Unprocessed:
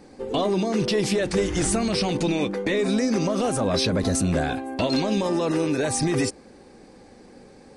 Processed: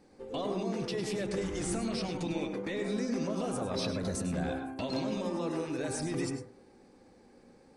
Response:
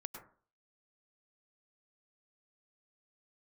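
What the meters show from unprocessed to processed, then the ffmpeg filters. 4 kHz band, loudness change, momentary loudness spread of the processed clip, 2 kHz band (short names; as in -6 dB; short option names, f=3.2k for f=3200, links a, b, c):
-12.5 dB, -11.0 dB, 3 LU, -11.5 dB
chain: -filter_complex "[1:a]atrim=start_sample=2205[a];[0:a][a]afir=irnorm=-1:irlink=0,volume=-8dB"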